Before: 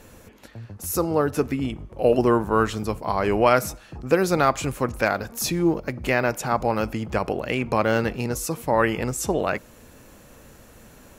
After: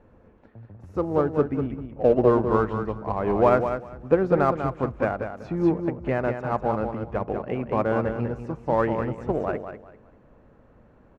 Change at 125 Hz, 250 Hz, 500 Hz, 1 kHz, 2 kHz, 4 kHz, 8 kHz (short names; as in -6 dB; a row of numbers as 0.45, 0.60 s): -0.5 dB, -1.0 dB, 0.0 dB, -2.5 dB, -8.0 dB, under -15 dB, under -30 dB